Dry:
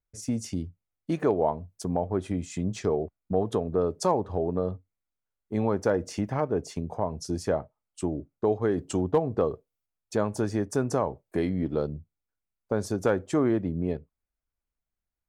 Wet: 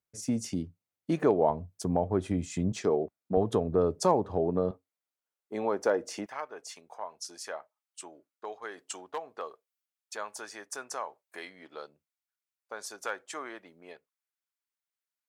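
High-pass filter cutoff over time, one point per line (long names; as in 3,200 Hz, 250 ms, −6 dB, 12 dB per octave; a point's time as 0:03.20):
130 Hz
from 0:01.50 62 Hz
from 0:02.72 200 Hz
from 0:03.37 53 Hz
from 0:04.01 110 Hz
from 0:04.71 400 Hz
from 0:06.26 1,200 Hz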